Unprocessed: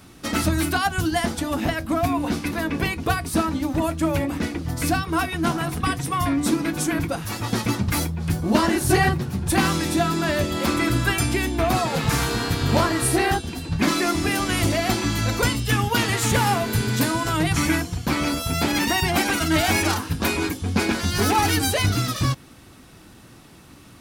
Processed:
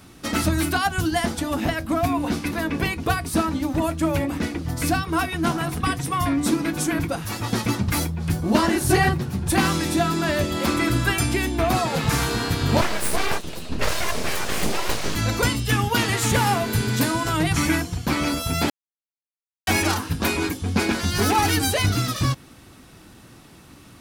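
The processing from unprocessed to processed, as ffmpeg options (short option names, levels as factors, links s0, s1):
-filter_complex "[0:a]asettb=1/sr,asplit=3[s0][s1][s2];[s0]atrim=end=12.814[s3];[s1]atrim=start=12.81:end=15.16,asetpts=PTS-STARTPTS,afade=t=in:d=0.004:c=qsin,afade=t=out:st=2.346:d=0.004:c=qsin,aeval=exprs='abs(val(0))':c=same[s4];[s2]atrim=start=15.156[s5];[s3][s4]acrossfade=d=0.004:c1=hsin:c2=qsin[s6];[s6][s5]acrossfade=d=0.004:c1=qsin:c2=hsin,asplit=3[s7][s8][s9];[s7]atrim=end=18.7,asetpts=PTS-STARTPTS,afade=t=out:st=18.696:d=0.004:c=hsin[s10];[s8]atrim=start=18.7:end=19.67,asetpts=PTS-STARTPTS,volume=0[s11];[s9]atrim=start=19.67,asetpts=PTS-STARTPTS,afade=t=in:d=0.004:c=hsin[s12];[s10][s11][s12]concat=n=3:v=0:a=1"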